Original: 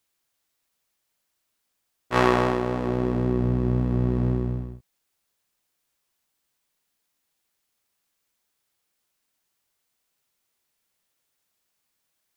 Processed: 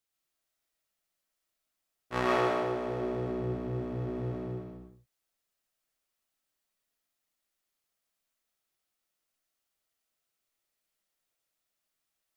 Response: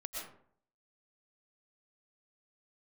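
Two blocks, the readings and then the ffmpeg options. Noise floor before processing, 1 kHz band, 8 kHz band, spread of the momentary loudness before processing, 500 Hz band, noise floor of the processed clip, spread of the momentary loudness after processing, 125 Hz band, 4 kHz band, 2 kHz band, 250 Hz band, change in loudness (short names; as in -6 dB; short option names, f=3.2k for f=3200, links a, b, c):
-77 dBFS, -6.5 dB, n/a, 7 LU, -5.5 dB, -84 dBFS, 12 LU, -12.5 dB, -6.5 dB, -6.5 dB, -10.5 dB, -8.5 dB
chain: -filter_complex "[0:a]bandreject=f=960:w=27[a];[1:a]atrim=start_sample=2205,afade=t=out:st=0.3:d=0.01,atrim=end_sample=13671[b];[a][b]afir=irnorm=-1:irlink=0,volume=-6dB"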